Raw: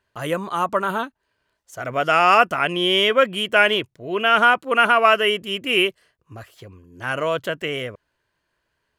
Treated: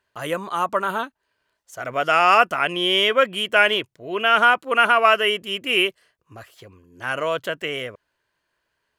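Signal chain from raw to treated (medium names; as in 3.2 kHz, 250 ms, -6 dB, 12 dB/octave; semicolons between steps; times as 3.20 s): bass shelf 280 Hz -7 dB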